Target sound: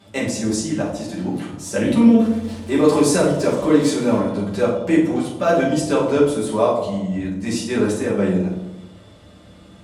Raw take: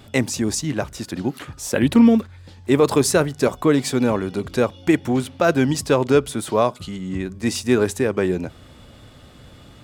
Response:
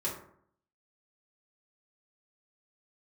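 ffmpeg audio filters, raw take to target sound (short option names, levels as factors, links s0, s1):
-filter_complex "[0:a]asettb=1/sr,asplit=3[s0][s1][s2];[s0]atrim=end=2.194[s3];[s1]atrim=start=2.19:end=4.19,asetpts=PTS-STARTPTS,afade=t=in:d=0.004:c=qsin,afade=t=out:st=1.996:d=0.004:c=qsin,aeval=exprs='val(0)+0.5*0.0299*sgn(val(0))':c=same[s4];[s2]atrim=start=4.186[s5];[s3][s4]acrossfade=d=0.004:c1=hsin:c2=qsin[s6];[s6][s5]acrossfade=d=0.004:c1=qsin:c2=hsin,highpass=f=130:p=1[s7];[1:a]atrim=start_sample=2205,asetrate=23373,aresample=44100[s8];[s7][s8]afir=irnorm=-1:irlink=0,volume=0.376"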